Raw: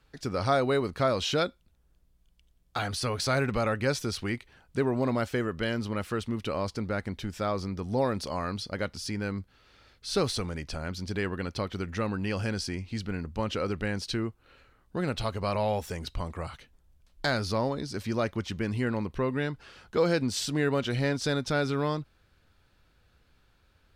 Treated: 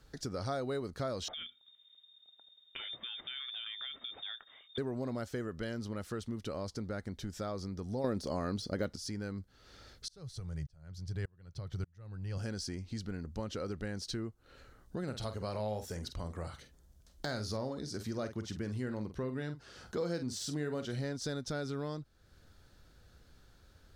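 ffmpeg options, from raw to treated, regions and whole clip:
-filter_complex "[0:a]asettb=1/sr,asplit=3[a][b][c];[a]atrim=end=1.284[d];[b]atrim=start=1.28:end=4.78,asetpts=PTS-STARTPTS,afade=t=in:d=0.004:c=qsin,afade=t=out:st=3.496:d=0.004:c=qsin,acompressor=threshold=-35dB:ratio=3:attack=3.2:release=140:knee=1:detection=peak,lowpass=f=3.1k:t=q:w=0.5098,lowpass=f=3.1k:t=q:w=0.6013,lowpass=f=3.1k:t=q:w=0.9,lowpass=f=3.1k:t=q:w=2.563,afreqshift=-3700[e];[c]atrim=start=4.776[f];[d][e]acrossfade=d=0.004:c1=hsin:c2=qsin[g];[g][f]acrossfade=d=0.004:c1=qsin:c2=hsin,asettb=1/sr,asplit=3[h][i][j];[h]atrim=end=8.044[k];[i]atrim=start=8.04:end=8.96,asetpts=PTS-STARTPTS,afade=t=in:d=0.004:c=qsin,afade=t=out:st=0.916:d=0.004:c=qsin,equalizer=f=310:t=o:w=2:g=5,acontrast=85[l];[j]atrim=start=8.956[m];[k][l]acrossfade=d=0.004:c1=hsin:c2=qsin[n];[n][m]acrossfade=d=0.004:c1=qsin:c2=hsin,asettb=1/sr,asplit=3[o][p][q];[o]atrim=end=10.084[r];[p]atrim=start=10.08:end=12.38,asetpts=PTS-STARTPTS,afade=t=in:d=0.004:c=qsin,afade=t=out:st=2.296:d=0.004:c=qsin,lowshelf=f=180:t=q:w=3:g=8.5,aeval=exprs='val(0)*pow(10,-35*if(lt(mod(-1.7*n/s,1),2*abs(-1.7)/1000),1-mod(-1.7*n/s,1)/(2*abs(-1.7)/1000),(mod(-1.7*n/s,1)-2*abs(-1.7)/1000)/(1-2*abs(-1.7)/1000))/20)':c=same[s];[q]atrim=start=12.376[t];[r][s]acrossfade=d=0.004:c1=hsin:c2=qsin[u];[u][t]acrossfade=d=0.004:c1=qsin:c2=hsin,asettb=1/sr,asplit=3[v][w][x];[v]atrim=end=15.034[y];[w]atrim=start=15.03:end=21.03,asetpts=PTS-STARTPTS,afade=t=in:d=0.004:c=qsin,afade=t=out:st=5.996:d=0.004:c=qsin,highpass=45,asplit=2[z][aa];[aa]adelay=47,volume=-10dB[ab];[z][ab]amix=inputs=2:normalize=0,atrim=end_sample=264600[ac];[x]atrim=start=21.026[ad];[y][ac]acrossfade=d=0.004:c1=hsin:c2=qsin[ae];[ae][ad]acrossfade=d=0.004:c1=qsin:c2=hsin,deesser=0.7,equalizer=f=1k:t=o:w=0.67:g=-5,equalizer=f=2.5k:t=o:w=0.67:g=-9,equalizer=f=6.3k:t=o:w=0.67:g=4,acompressor=threshold=-50dB:ratio=2,volume=4.5dB"

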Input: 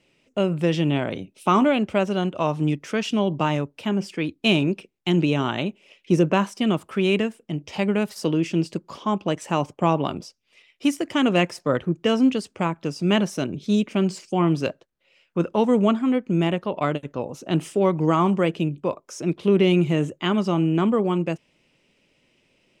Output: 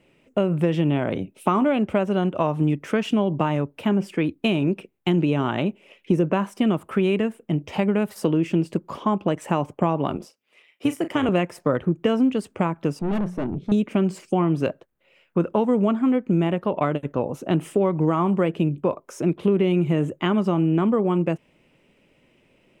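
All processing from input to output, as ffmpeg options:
-filter_complex "[0:a]asettb=1/sr,asplit=3[a][b][c];[a]atrim=end=10.164[d];[b]atrim=start=10.16:end=11.29,asetpts=PTS-STARTPTS,afade=t=in:d=0.004:c=qsin,afade=t=out:st=1.126:d=0.004:c=qsin,highpass=260,asplit=2[e][f];[f]adelay=37,volume=-11.5dB[g];[e][g]amix=inputs=2:normalize=0,atrim=end_sample=49833,tremolo=f=160:d=0.462[h];[c]atrim=start=11.286[i];[d][h]acrossfade=d=0.004:c1=hsin:c2=qsin[j];[j][i]acrossfade=d=0.004:c1=qsin:c2=hsin,asettb=1/sr,asplit=3[k][l][m];[k]atrim=end=12.994[n];[l]atrim=start=12.99:end=13.72,asetpts=PTS-STARTPTS,afade=t=in:d=0.004:c=qsin,afade=t=out:st=0.726:d=0.004:c=qsin,lowpass=f=1.2k:p=1,bandreject=f=60:t=h:w=6,bandreject=f=120:t=h:w=6,bandreject=f=180:t=h:w=6,aeval=exprs='(tanh(22.4*val(0)+0.35)-tanh(0.35))/22.4':c=same[o];[m]atrim=start=13.716[p];[n][o]acrossfade=d=0.004:c1=hsin:c2=qsin[q];[q][p]acrossfade=d=0.004:c1=qsin:c2=hsin,acompressor=threshold=-23dB:ratio=4,equalizer=f=5.2k:w=0.8:g=-13,volume=6dB"

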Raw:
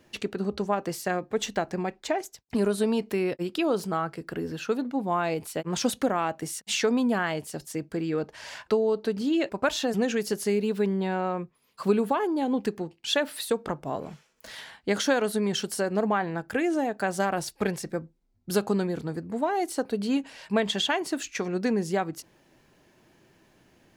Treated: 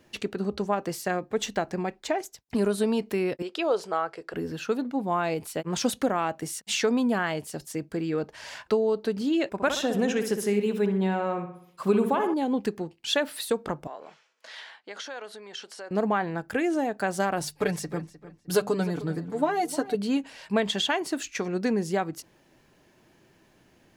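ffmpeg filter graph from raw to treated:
-filter_complex "[0:a]asettb=1/sr,asplit=3[a][b][c];[a]atrim=end=3.424[d];[b]atrim=start=3.42:end=4.34,asetpts=PTS-STARTPTS,afade=t=in:d=0.004:c=qsin,afade=t=out:st=0.916:d=0.004:c=qsin,lowpass=7.3k,lowshelf=f=320:t=q:w=1.5:g=-12.5[e];[c]atrim=start=4.336[f];[d][e]acrossfade=d=0.004:c1=hsin:c2=qsin[g];[g][f]acrossfade=d=0.004:c1=qsin:c2=hsin,asettb=1/sr,asplit=3[h][i][j];[h]atrim=end=9.504[k];[i]atrim=start=9.5:end=12.34,asetpts=PTS-STARTPTS,afade=t=in:d=0.004:c=qsin,afade=t=out:st=2.836:d=0.004:c=qsin,bandreject=f=4.5k:w=6.9,asplit=2[l][m];[m]adelay=63,lowpass=f=3.1k:p=1,volume=-7.5dB,asplit=2[n][o];[o]adelay=63,lowpass=f=3.1k:p=1,volume=0.52,asplit=2[p][q];[q]adelay=63,lowpass=f=3.1k:p=1,volume=0.52,asplit=2[r][s];[s]adelay=63,lowpass=f=3.1k:p=1,volume=0.52,asplit=2[t][u];[u]adelay=63,lowpass=f=3.1k:p=1,volume=0.52,asplit=2[v][w];[w]adelay=63,lowpass=f=3.1k:p=1,volume=0.52[x];[l][n][p][r][t][v][x]amix=inputs=7:normalize=0,atrim=end_sample=125244[y];[j]atrim=start=12.336[z];[k][y]acrossfade=d=0.004:c1=hsin:c2=qsin[aa];[aa][z]acrossfade=d=0.004:c1=qsin:c2=hsin,asettb=1/sr,asplit=3[ab][ac][ad];[ab]atrim=end=13.874[ae];[ac]atrim=start=13.87:end=15.91,asetpts=PTS-STARTPTS,afade=t=in:d=0.004:c=qsin,afade=t=out:st=2.036:d=0.004:c=qsin,acompressor=threshold=-34dB:ratio=3:attack=3.2:release=140:knee=1:detection=peak,highpass=570,lowpass=5.3k[af];[ad]atrim=start=15.906[ag];[ae][af]acrossfade=d=0.004:c1=hsin:c2=qsin[ah];[ah][ag]acrossfade=d=0.004:c1=qsin:c2=hsin,asettb=1/sr,asplit=3[ai][aj][ak];[ai]atrim=end=17.404[al];[aj]atrim=start=17.4:end=19.95,asetpts=PTS-STARTPTS,afade=t=in:d=0.004:c=qsin,afade=t=out:st=2.546:d=0.004:c=qsin,bandreject=f=50:t=h:w=6,bandreject=f=100:t=h:w=6,bandreject=f=150:t=h:w=6,bandreject=f=200:t=h:w=6,aecho=1:1:6.8:0.64,atrim=end_sample=112455,asplit=2[am][an];[an]adelay=306,lowpass=f=4.2k:p=1,volume=-15.5dB,asplit=2[ao][ap];[ap]adelay=306,lowpass=f=4.2k:p=1,volume=0.29,asplit=2[aq][ar];[ar]adelay=306,lowpass=f=4.2k:p=1,volume=0.29[as];[am][ao][aq][as]amix=inputs=4:normalize=0,atrim=end_sample=112455[at];[ak]atrim=start=19.946[au];[al][at]acrossfade=d=0.004:c1=hsin:c2=qsin[av];[av][au]acrossfade=d=0.004:c1=qsin:c2=hsin"

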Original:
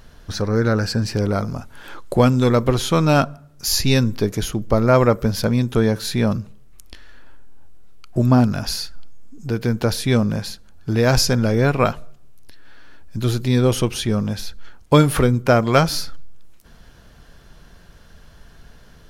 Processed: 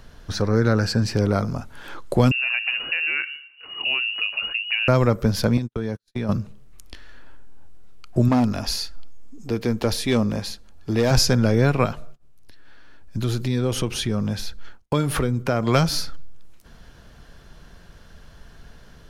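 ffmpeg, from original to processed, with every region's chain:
-filter_complex "[0:a]asettb=1/sr,asplit=3[a][b][c];[a]atrim=end=2.314[d];[b]atrim=start=2.31:end=4.88,asetpts=PTS-STARTPTS,afade=t=in:d=0.004:c=qsin,afade=t=out:st=2.566:d=0.004:c=qsin,acompressor=threshold=-20dB:ratio=6:attack=3.2:release=140:knee=1:detection=peak,lowpass=f=2.5k:t=q:w=0.5098,lowpass=f=2.5k:t=q:w=0.6013,lowpass=f=2.5k:t=q:w=0.9,lowpass=f=2.5k:t=q:w=2.563,afreqshift=-2900[e];[c]atrim=start=4.876[f];[d][e]acrossfade=d=0.004:c1=hsin:c2=qsin[g];[g][f]acrossfade=d=0.004:c1=qsin:c2=hsin,asettb=1/sr,asplit=3[h][i][j];[h]atrim=end=5.574[k];[i]atrim=start=5.57:end=6.29,asetpts=PTS-STARTPTS,afade=t=in:d=0.004:c=qsin,afade=t=out:st=0.716:d=0.004:c=qsin,agate=range=-56dB:threshold=-21dB:ratio=16:release=100:detection=peak,acompressor=threshold=-21dB:ratio=12:attack=3.2:release=140:knee=1:detection=peak[l];[j]atrim=start=6.286[m];[k][l]acrossfade=d=0.004:c1=hsin:c2=qsin[n];[n][m]acrossfade=d=0.004:c1=qsin:c2=hsin,asettb=1/sr,asplit=3[o][p][q];[o]atrim=end=8.284[r];[p]atrim=start=8.28:end=11.11,asetpts=PTS-STARTPTS,afade=t=in:d=0.004:c=qsin,afade=t=out:st=2.826:d=0.004:c=qsin,equalizer=f=140:w=2.9:g=-12,bandreject=f=1.5k:w=8.1,asoftclip=type=hard:threshold=-13dB[s];[q]atrim=start=11.106[t];[r][s]acrossfade=d=0.004:c1=hsin:c2=qsin[u];[u][t]acrossfade=d=0.004:c1=qsin:c2=hsin,asettb=1/sr,asplit=3[v][w][x];[v]atrim=end=11.854[y];[w]atrim=start=11.85:end=15.67,asetpts=PTS-STARTPTS,afade=t=in:d=0.004:c=qsin,afade=t=out:st=3.816:d=0.004:c=qsin,acompressor=threshold=-20dB:ratio=2.5:attack=3.2:release=140:knee=1:detection=peak,agate=range=-33dB:threshold=-33dB:ratio=3:release=100:detection=peak[z];[x]atrim=start=15.666[aa];[y][z]acrossfade=d=0.004:c1=hsin:c2=qsin[ab];[ab][aa]acrossfade=d=0.004:c1=qsin:c2=hsin,highshelf=f=11k:g=-6,acrossover=split=230|3000[ac][ad][ae];[ad]acompressor=threshold=-17dB:ratio=6[af];[ac][af][ae]amix=inputs=3:normalize=0"

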